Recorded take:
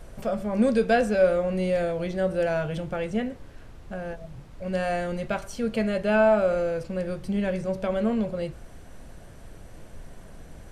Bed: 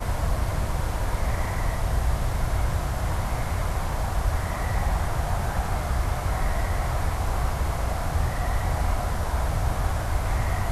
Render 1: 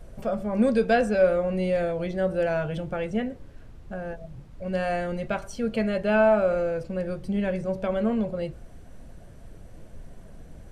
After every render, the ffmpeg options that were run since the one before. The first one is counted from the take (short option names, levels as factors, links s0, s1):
-af "afftdn=nr=6:nf=-46"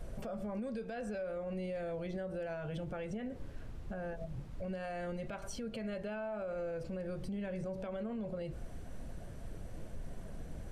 -af "acompressor=threshold=0.0282:ratio=6,alimiter=level_in=2.82:limit=0.0631:level=0:latency=1:release=95,volume=0.355"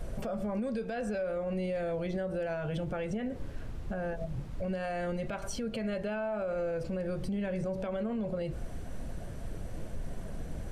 -af "volume=2"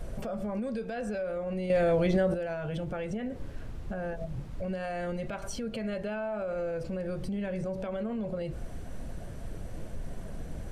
-filter_complex "[0:a]asplit=3[s0][s1][s2];[s0]atrim=end=1.702[s3];[s1]atrim=start=1.698:end=2.342,asetpts=PTS-STARTPTS,volume=2.66[s4];[s2]atrim=start=2.338[s5];[s3][s4]acrossfade=d=0.004:c1=hsin:c2=hsin[s6];[s6][s5]acrossfade=d=0.004:c1=hsin:c2=hsin"